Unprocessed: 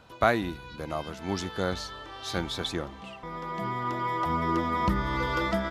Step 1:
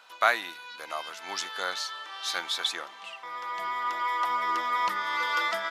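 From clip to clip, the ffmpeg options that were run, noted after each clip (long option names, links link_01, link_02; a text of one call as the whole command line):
ffmpeg -i in.wav -af "highpass=1100,volume=5dB" out.wav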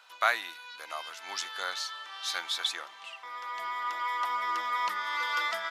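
ffmpeg -i in.wav -af "lowshelf=frequency=490:gain=-10.5,volume=-1.5dB" out.wav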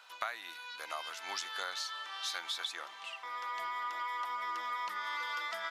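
ffmpeg -i in.wav -af "acompressor=threshold=-34dB:ratio=10" out.wav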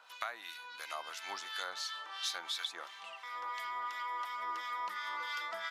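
ffmpeg -i in.wav -filter_complex "[0:a]acrossover=split=1400[link_01][link_02];[link_01]aeval=exprs='val(0)*(1-0.7/2+0.7/2*cos(2*PI*2.9*n/s))':channel_layout=same[link_03];[link_02]aeval=exprs='val(0)*(1-0.7/2-0.7/2*cos(2*PI*2.9*n/s))':channel_layout=same[link_04];[link_03][link_04]amix=inputs=2:normalize=0,volume=2dB" out.wav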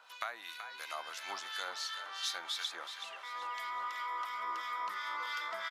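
ffmpeg -i in.wav -filter_complex "[0:a]asplit=5[link_01][link_02][link_03][link_04][link_05];[link_02]adelay=378,afreqshift=59,volume=-9dB[link_06];[link_03]adelay=756,afreqshift=118,volume=-17.2dB[link_07];[link_04]adelay=1134,afreqshift=177,volume=-25.4dB[link_08];[link_05]adelay=1512,afreqshift=236,volume=-33.5dB[link_09];[link_01][link_06][link_07][link_08][link_09]amix=inputs=5:normalize=0" out.wav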